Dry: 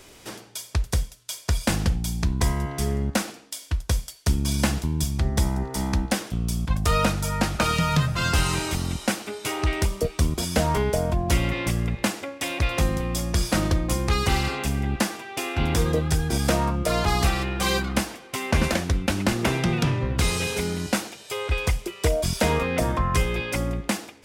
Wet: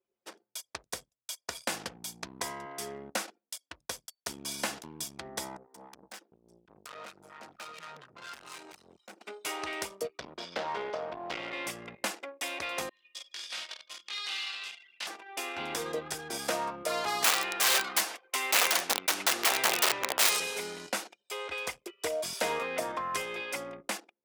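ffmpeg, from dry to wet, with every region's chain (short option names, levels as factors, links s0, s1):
-filter_complex "[0:a]asettb=1/sr,asplit=3[s0][s1][s2];[s0]atrim=end=5.574[s3];[s1]atrim=start=5.57:end=9.21,asetpts=PTS-STARTPTS,afade=t=in:d=0.004:c=qsin,afade=t=out:st=3.636:d=0.004:c=qsin,aeval=exprs='(tanh(35.5*val(0)+0.6)-tanh(0.6))/35.5':c=same,acrossover=split=890[s4][s5];[s4]aeval=exprs='val(0)*(1-0.5/2+0.5/2*cos(2*PI*4.2*n/s))':c=same[s6];[s5]aeval=exprs='val(0)*(1-0.5/2-0.5/2*cos(2*PI*4.2*n/s))':c=same[s7];[s6][s7]amix=inputs=2:normalize=0[s8];[s2]atrim=start=9.206[s9];[s3][s8]acrossfade=d=0.004:c1=hsin:c2=qsin[s10];[s10][s9]acrossfade=d=0.004:c1=qsin:c2=hsin,asettb=1/sr,asplit=3[s11][s12][s13];[s11]atrim=end=10.184[s14];[s12]atrim=start=10.18:end=11.53,asetpts=PTS-STARTPTS,afade=t=in:d=0.004:c=qsin,afade=t=out:st=1.346:d=0.004:c=qsin,lowpass=f=4700:w=0.5412,lowpass=f=4700:w=1.3066,aeval=exprs='clip(val(0),-1,0.0376)':c=same[s15];[s13]atrim=start=11.526[s16];[s14][s15]acrossfade=d=0.004:c1=hsin:c2=qsin[s17];[s17][s16]acrossfade=d=0.004:c1=qsin:c2=hsin,asettb=1/sr,asplit=3[s18][s19][s20];[s18]atrim=end=12.894[s21];[s19]atrim=start=12.89:end=15.07,asetpts=PTS-STARTPTS,afade=t=in:d=0.004:c=qsin,afade=t=out:st=2.176:d=0.004:c=qsin,bandpass=f=3400:t=q:w=1.9,aecho=1:1:20|50|95|162.5|263.8|415.6:0.794|0.631|0.501|0.398|0.316|0.251,atrim=end_sample=96138[s22];[s20]atrim=start=15.066[s23];[s21][s22]acrossfade=d=0.004:c1=hsin:c2=qsin[s24];[s24][s23]acrossfade=d=0.004:c1=qsin:c2=hsin,asettb=1/sr,asplit=3[s25][s26][s27];[s25]atrim=end=17.244[s28];[s26]atrim=start=17.24:end=20.4,asetpts=PTS-STARTPTS,afade=t=in:d=0.004:c=qsin,afade=t=out:st=3.156:d=0.004:c=qsin,aeval=exprs='(mod(7.08*val(0)+1,2)-1)/7.08':c=same,lowshelf=f=350:g=-11,acontrast=55[s29];[s27]atrim=start=20.396[s30];[s28][s29]acrossfade=d=0.004:c1=hsin:c2=qsin[s31];[s31][s30]acrossfade=d=0.004:c1=qsin:c2=hsin,anlmdn=3.98,highpass=470,volume=0.501"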